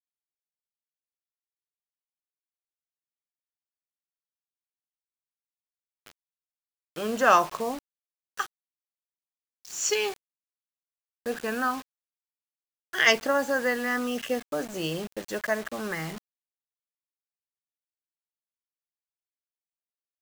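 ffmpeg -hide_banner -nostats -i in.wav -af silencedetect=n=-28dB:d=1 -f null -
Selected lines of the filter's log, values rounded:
silence_start: 0.00
silence_end: 6.98 | silence_duration: 6.98
silence_start: 8.42
silence_end: 9.77 | silence_duration: 1.34
silence_start: 10.10
silence_end: 11.26 | silence_duration: 1.16
silence_start: 11.75
silence_end: 12.94 | silence_duration: 1.19
silence_start: 16.10
silence_end: 20.21 | silence_duration: 4.11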